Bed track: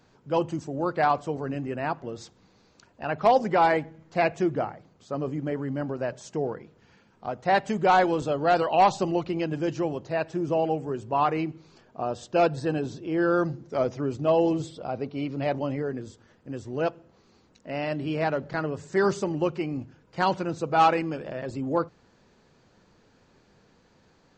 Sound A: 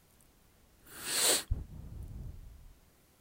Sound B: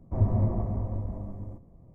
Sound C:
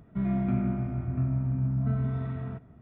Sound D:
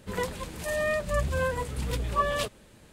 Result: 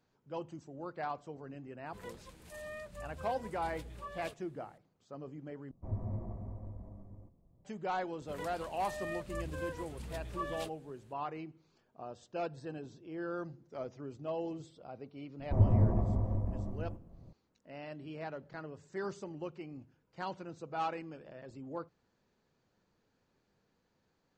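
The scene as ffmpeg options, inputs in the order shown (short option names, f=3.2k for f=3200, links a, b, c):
-filter_complex "[4:a]asplit=2[a][b];[2:a]asplit=2[c][d];[0:a]volume=-16dB[e];[a]alimiter=limit=-18.5dB:level=0:latency=1:release=244[f];[e]asplit=2[g][h];[g]atrim=end=5.714[i];[c]atrim=end=1.94,asetpts=PTS-STARTPTS,volume=-13.5dB[j];[h]atrim=start=7.646[k];[f]atrim=end=2.92,asetpts=PTS-STARTPTS,volume=-17dB,afade=t=in:d=0.004:c=hsin,afade=t=out:st=2.916:d=0.004:c=hsin,adelay=1860[l];[b]atrim=end=2.92,asetpts=PTS-STARTPTS,volume=-13.5dB,afade=t=in:d=0.004:c=hsin,afade=t=out:st=2.916:d=0.004:c=hsin,adelay=8210[m];[d]atrim=end=1.94,asetpts=PTS-STARTPTS,volume=-1.5dB,afade=t=in:d=0.004:c=hsin,afade=t=out:st=1.936:d=0.004:c=hsin,adelay=15390[n];[i][j]acrossfade=d=0.004:c1=hsin:c2=hsin[o];[o][k]acrossfade=d=0.004:c1=hsin:c2=hsin[p];[p][l][m][n]amix=inputs=4:normalize=0"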